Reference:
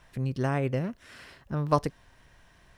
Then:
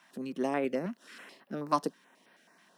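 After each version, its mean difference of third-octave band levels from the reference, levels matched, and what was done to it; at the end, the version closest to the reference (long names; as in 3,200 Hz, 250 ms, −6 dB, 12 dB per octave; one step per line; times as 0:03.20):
5.0 dB: Butterworth high-pass 190 Hz 48 dB per octave
notch on a step sequencer 9.3 Hz 470–6,900 Hz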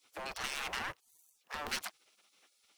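17.5 dB: in parallel at −11.5 dB: fuzz pedal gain 34 dB, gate −42 dBFS
on the sum: gate on every frequency bin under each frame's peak −25 dB weak
level +1 dB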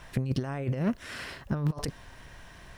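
7.0 dB: compressor whose output falls as the input rises −32 dBFS, ratio −0.5
level +4 dB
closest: first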